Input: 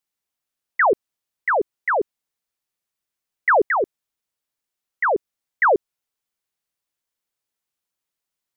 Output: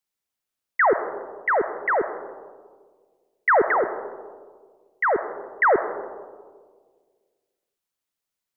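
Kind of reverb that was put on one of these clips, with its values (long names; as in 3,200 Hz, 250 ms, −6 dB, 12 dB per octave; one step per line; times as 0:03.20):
comb and all-pass reverb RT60 1.7 s, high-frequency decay 0.25×, pre-delay 25 ms, DRR 9.5 dB
level −1.5 dB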